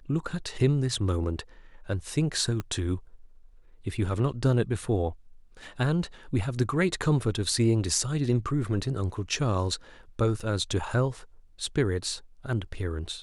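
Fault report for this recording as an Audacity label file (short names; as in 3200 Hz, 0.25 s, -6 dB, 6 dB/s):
2.600000	2.600000	pop -19 dBFS
10.400000	10.400000	gap 4.3 ms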